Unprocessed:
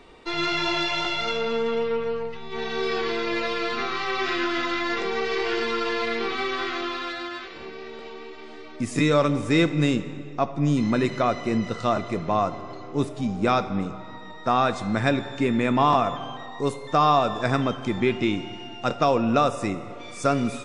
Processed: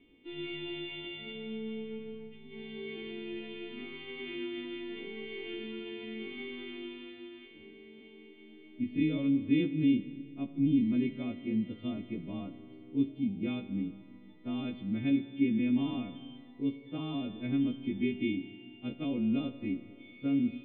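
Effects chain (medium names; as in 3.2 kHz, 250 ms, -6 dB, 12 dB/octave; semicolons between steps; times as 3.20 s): partials quantised in pitch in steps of 2 st; cascade formant filter i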